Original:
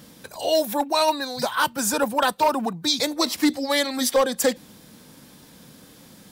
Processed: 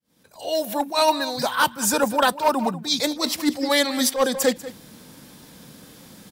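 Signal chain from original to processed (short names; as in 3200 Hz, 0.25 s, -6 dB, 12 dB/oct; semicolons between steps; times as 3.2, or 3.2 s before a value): opening faded in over 1.11 s; outdoor echo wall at 33 m, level -15 dB; attack slew limiter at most 200 dB/s; gain +2.5 dB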